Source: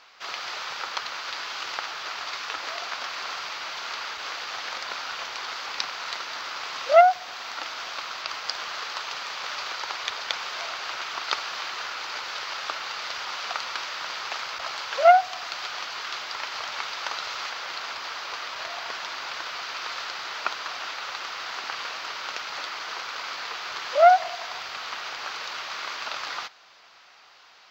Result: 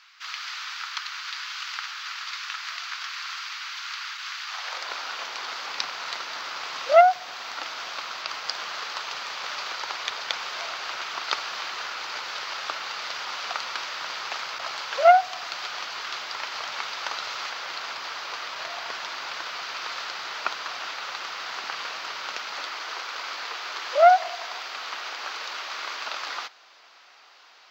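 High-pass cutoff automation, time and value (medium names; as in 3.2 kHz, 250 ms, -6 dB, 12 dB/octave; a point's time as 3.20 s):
high-pass 24 dB/octave
4.43 s 1.2 kHz
4.84 s 300 Hz
5.91 s 100 Hz
22.17 s 100 Hz
22.77 s 240 Hz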